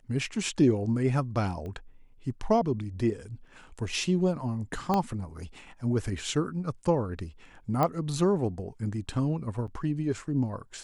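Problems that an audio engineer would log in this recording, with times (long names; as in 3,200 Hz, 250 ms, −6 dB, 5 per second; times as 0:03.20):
0:01.66: click −29 dBFS
0:04.94: click −14 dBFS
0:07.83: click −14 dBFS
0:09.67–0:09.68: drop-out 7.4 ms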